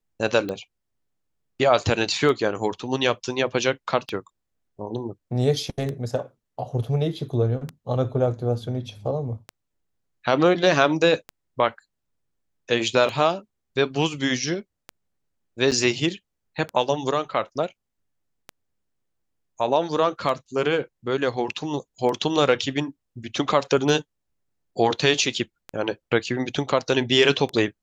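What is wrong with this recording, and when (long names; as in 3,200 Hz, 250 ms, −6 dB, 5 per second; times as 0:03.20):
scratch tick 33 1/3 rpm −17 dBFS
0:15.71–0:15.72: drop-out 6.9 ms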